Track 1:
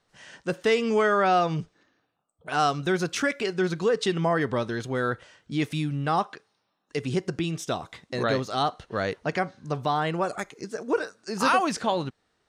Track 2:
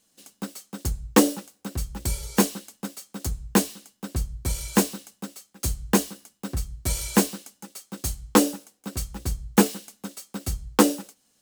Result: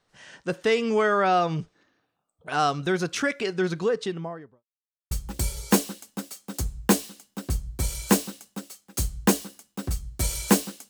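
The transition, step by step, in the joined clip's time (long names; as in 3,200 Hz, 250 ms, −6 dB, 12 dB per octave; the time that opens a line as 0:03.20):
track 1
0:03.70–0:04.64: fade out and dull
0:04.64–0:05.11: silence
0:05.11: continue with track 2 from 0:01.77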